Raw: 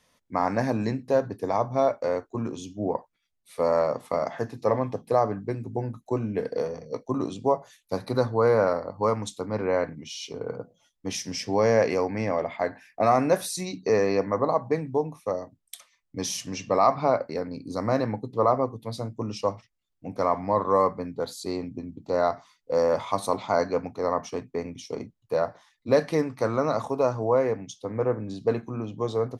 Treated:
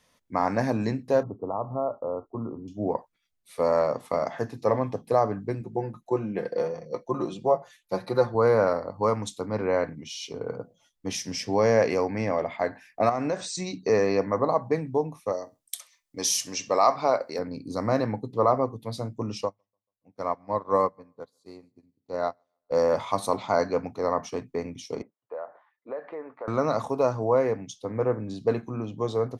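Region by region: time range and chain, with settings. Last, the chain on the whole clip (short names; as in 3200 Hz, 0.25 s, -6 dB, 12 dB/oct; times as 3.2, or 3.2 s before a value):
1.23–2.68 compressor 1.5:1, threshold -33 dBFS + brick-wall FIR low-pass 1400 Hz
5.61–8.35 tone controls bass -4 dB, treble -6 dB + comb 5.7 ms, depth 59%
13.09–13.79 brick-wall FIR low-pass 8500 Hz + compressor 5:1, threshold -23 dBFS
15.32–17.39 tone controls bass -11 dB, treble +8 dB + feedback echo 66 ms, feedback 24%, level -23 dB
19.45–22.71 feedback echo 0.141 s, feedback 51%, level -18 dB + upward expander 2.5:1, over -41 dBFS
25.02–26.48 Butterworth band-pass 890 Hz, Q 0.66 + air absorption 230 m + compressor 2.5:1, threshold -36 dBFS
whole clip: dry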